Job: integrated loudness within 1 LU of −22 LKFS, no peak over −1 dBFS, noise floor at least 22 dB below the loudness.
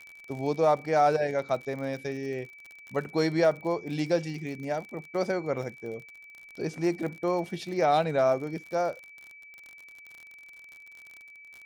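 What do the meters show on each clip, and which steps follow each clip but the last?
crackle rate 50 per second; interfering tone 2,300 Hz; level of the tone −47 dBFS; integrated loudness −29.0 LKFS; sample peak −12.5 dBFS; target loudness −22.0 LKFS
→ click removal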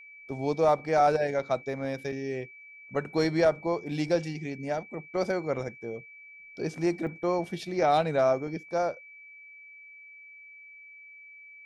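crackle rate 0.086 per second; interfering tone 2,300 Hz; level of the tone −47 dBFS
→ notch filter 2,300 Hz, Q 30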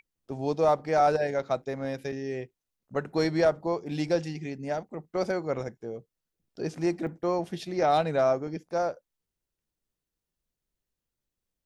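interfering tone none found; integrated loudness −29.0 LKFS; sample peak −12.5 dBFS; target loudness −22.0 LKFS
→ level +7 dB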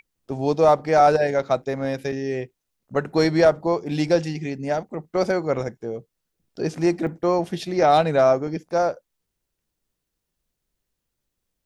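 integrated loudness −22.0 LKFS; sample peak −5.5 dBFS; background noise floor −81 dBFS

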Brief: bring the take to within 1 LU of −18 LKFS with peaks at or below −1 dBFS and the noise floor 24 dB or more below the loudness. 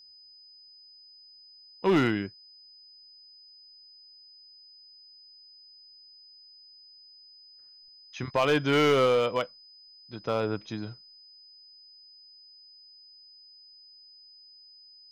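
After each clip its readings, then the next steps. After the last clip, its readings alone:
share of clipped samples 0.4%; peaks flattened at −17.5 dBFS; interfering tone 5,000 Hz; level of the tone −51 dBFS; integrated loudness −27.0 LKFS; sample peak −17.5 dBFS; target loudness −18.0 LKFS
→ clipped peaks rebuilt −17.5 dBFS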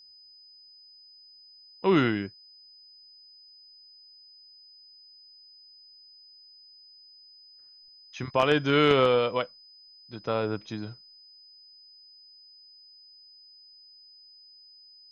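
share of clipped samples 0.0%; interfering tone 5,000 Hz; level of the tone −51 dBFS
→ notch filter 5,000 Hz, Q 30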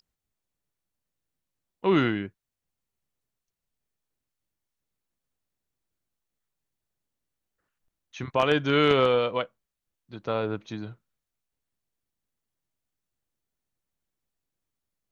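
interfering tone none found; integrated loudness −25.0 LKFS; sample peak −8.5 dBFS; target loudness −18.0 LKFS
→ level +7 dB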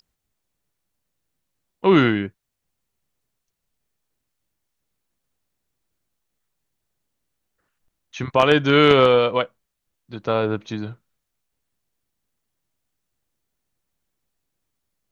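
integrated loudness −18.0 LKFS; sample peak −1.5 dBFS; background noise floor −79 dBFS

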